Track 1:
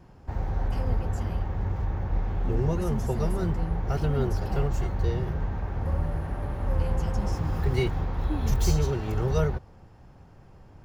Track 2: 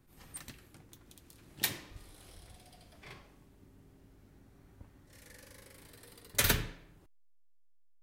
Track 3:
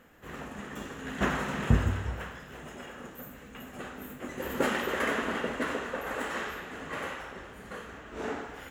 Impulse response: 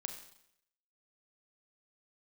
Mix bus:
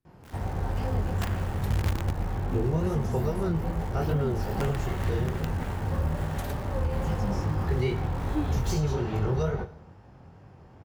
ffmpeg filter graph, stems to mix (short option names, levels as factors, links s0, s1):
-filter_complex "[0:a]highshelf=f=4900:g=-7,flanger=delay=19.5:depth=5.9:speed=2.4,highpass=68,adelay=50,volume=1.19,asplit=2[s0][s1];[s1]volume=0.631[s2];[1:a]volume=0.133[s3];[2:a]bandreject=f=179.5:t=h:w=4,bandreject=f=359:t=h:w=4,bandreject=f=538.5:t=h:w=4,bandreject=f=718:t=h:w=4,bandreject=f=897.5:t=h:w=4,bandreject=f=1077:t=h:w=4,bandreject=f=1256.5:t=h:w=4,bandreject=f=1436:t=h:w=4,bandreject=f=1615.5:t=h:w=4,bandreject=f=1795:t=h:w=4,bandreject=f=1974.5:t=h:w=4,bandreject=f=2154:t=h:w=4,bandreject=f=2333.5:t=h:w=4,bandreject=f=2513:t=h:w=4,bandreject=f=2692.5:t=h:w=4,bandreject=f=2872:t=h:w=4,bandreject=f=3051.5:t=h:w=4,bandreject=f=3231:t=h:w=4,bandreject=f=3410.5:t=h:w=4,bandreject=f=3590:t=h:w=4,bandreject=f=3769.5:t=h:w=4,bandreject=f=3949:t=h:w=4,bandreject=f=4128.5:t=h:w=4,bandreject=f=4308:t=h:w=4,bandreject=f=4487.5:t=h:w=4,bandreject=f=4667:t=h:w=4,bandreject=f=4846.5:t=h:w=4,bandreject=f=5026:t=h:w=4,bandreject=f=5205.5:t=h:w=4,bandreject=f=5385:t=h:w=4,bandreject=f=5564.5:t=h:w=4,bandreject=f=5744:t=h:w=4,bandreject=f=5923.5:t=h:w=4,bandreject=f=6103:t=h:w=4,bandreject=f=6282.5:t=h:w=4,bandreject=f=6462:t=h:w=4,bandreject=f=6641.5:t=h:w=4,bandreject=f=6821:t=h:w=4,bandreject=f=7000.5:t=h:w=4,asubboost=boost=6:cutoff=180,acrusher=bits=4:dc=4:mix=0:aa=0.000001,volume=0.447[s4];[3:a]atrim=start_sample=2205[s5];[s2][s5]afir=irnorm=-1:irlink=0[s6];[s0][s3][s4][s6]amix=inputs=4:normalize=0,alimiter=limit=0.133:level=0:latency=1:release=113"